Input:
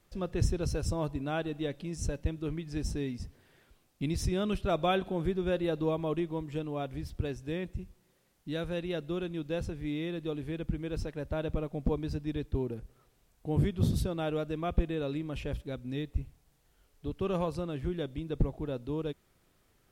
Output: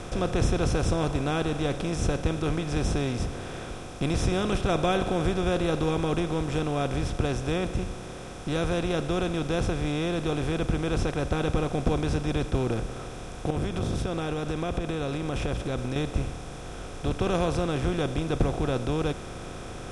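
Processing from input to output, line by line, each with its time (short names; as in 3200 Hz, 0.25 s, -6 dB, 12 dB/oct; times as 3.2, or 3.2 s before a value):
13.5–15.96 compressor, threshold -38 dBFS
whole clip: per-bin compression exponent 0.4; steep low-pass 11000 Hz 72 dB/oct; notch 630 Hz, Q 12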